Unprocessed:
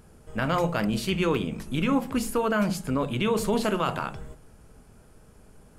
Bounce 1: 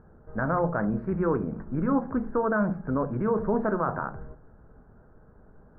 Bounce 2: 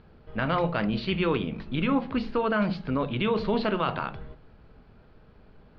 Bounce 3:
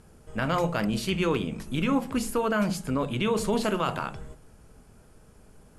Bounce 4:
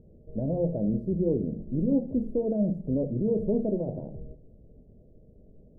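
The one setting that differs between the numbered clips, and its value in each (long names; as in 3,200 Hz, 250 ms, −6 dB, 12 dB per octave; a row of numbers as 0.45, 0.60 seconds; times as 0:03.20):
elliptic low-pass filter, frequency: 1,600, 4,300, 12,000, 600 Hertz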